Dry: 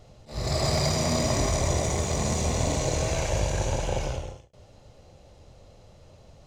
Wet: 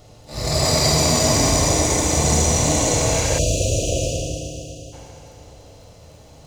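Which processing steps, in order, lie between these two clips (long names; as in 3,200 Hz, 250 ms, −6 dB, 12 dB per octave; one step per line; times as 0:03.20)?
surface crackle 18 per second −52 dBFS
high-shelf EQ 6,600 Hz +9 dB
feedback delay network reverb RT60 3 s, high-frequency decay 0.95×, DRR −0.5 dB
time-frequency box erased 0:03.39–0:04.93, 730–2,400 Hz
low-shelf EQ 85 Hz −5 dB
level +4.5 dB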